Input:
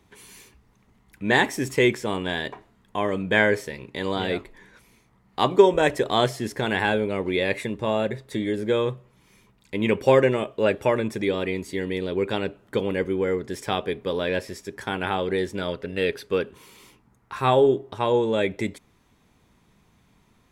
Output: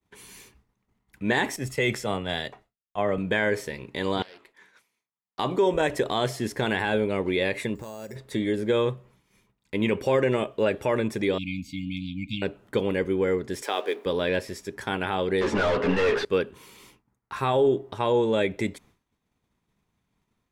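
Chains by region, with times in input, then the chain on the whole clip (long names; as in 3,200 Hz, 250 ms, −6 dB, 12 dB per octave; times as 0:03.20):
0:01.56–0:03.18: comb filter 1.5 ms, depth 41% + multiband upward and downward expander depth 100%
0:04.22–0:05.39: high-pass filter 910 Hz 6 dB per octave + downward compressor, threshold −45 dBFS + highs frequency-modulated by the lows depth 0.33 ms
0:07.75–0:08.16: downward compressor 12 to 1, threshold −34 dBFS + bad sample-rate conversion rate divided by 6×, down filtered, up hold
0:11.38–0:12.42: linear-phase brick-wall band-stop 300–2,100 Hz + parametric band 10,000 Hz −14.5 dB 0.88 octaves
0:13.62–0:14.06: mu-law and A-law mismatch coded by mu + high-pass filter 330 Hz 24 dB per octave
0:15.41–0:16.25: mid-hump overdrive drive 39 dB, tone 1,300 Hz, clips at −11 dBFS + high-frequency loss of the air 63 metres + string-ensemble chorus
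whole clip: downward expander −50 dBFS; brickwall limiter −13.5 dBFS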